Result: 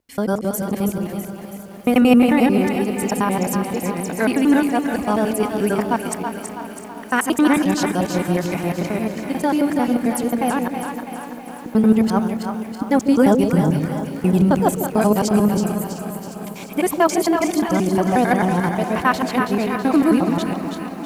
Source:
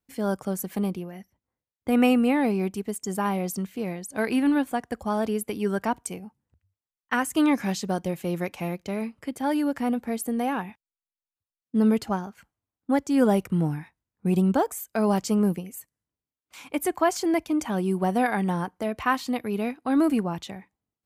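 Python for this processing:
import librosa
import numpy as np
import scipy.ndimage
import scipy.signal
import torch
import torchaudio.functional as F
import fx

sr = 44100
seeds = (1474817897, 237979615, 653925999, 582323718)

y = fx.local_reverse(x, sr, ms=89.0)
y = fx.echo_split(y, sr, split_hz=610.0, low_ms=149, high_ms=326, feedback_pct=52, wet_db=-6.0)
y = fx.echo_crushed(y, sr, ms=353, feedback_pct=80, bits=8, wet_db=-14.5)
y = y * librosa.db_to_amplitude(6.0)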